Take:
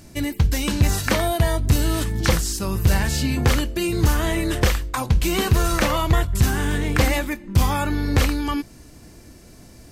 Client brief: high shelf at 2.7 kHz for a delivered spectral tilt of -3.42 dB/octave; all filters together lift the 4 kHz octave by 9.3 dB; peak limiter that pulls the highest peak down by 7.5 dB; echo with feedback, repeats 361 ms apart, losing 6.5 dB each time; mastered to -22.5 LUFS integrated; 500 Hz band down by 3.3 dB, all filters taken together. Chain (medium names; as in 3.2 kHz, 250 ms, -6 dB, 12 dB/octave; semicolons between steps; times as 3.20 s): peaking EQ 500 Hz -5 dB; treble shelf 2.7 kHz +7 dB; peaking EQ 4 kHz +6 dB; peak limiter -9 dBFS; feedback delay 361 ms, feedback 47%, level -6.5 dB; trim -3 dB